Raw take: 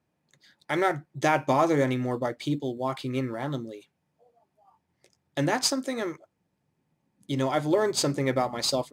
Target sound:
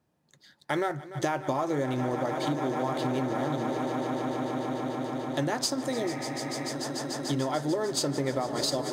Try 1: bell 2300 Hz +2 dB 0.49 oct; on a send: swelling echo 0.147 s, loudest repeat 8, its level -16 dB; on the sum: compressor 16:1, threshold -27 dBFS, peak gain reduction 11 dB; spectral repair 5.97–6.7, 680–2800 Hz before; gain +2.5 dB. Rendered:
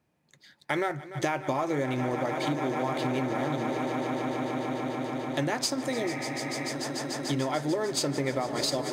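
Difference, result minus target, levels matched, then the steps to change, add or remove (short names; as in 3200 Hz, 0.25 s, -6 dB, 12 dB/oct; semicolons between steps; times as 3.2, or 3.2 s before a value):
2000 Hz band +3.0 dB
change: bell 2300 Hz -6 dB 0.49 oct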